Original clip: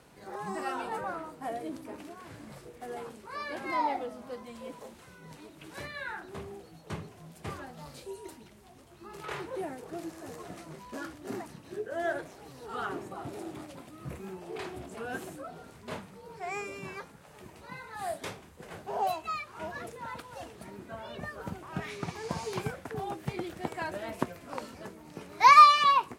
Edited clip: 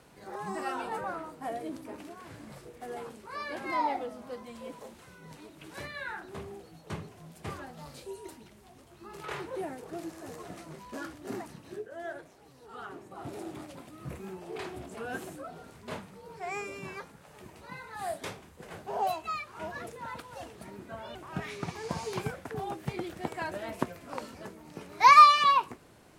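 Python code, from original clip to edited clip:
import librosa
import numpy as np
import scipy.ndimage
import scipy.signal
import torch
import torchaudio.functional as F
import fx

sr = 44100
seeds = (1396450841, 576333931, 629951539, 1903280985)

y = fx.edit(x, sr, fx.fade_down_up(start_s=11.7, length_s=1.58, db=-8.0, fade_s=0.2),
    fx.cut(start_s=21.15, length_s=0.4), tone=tone)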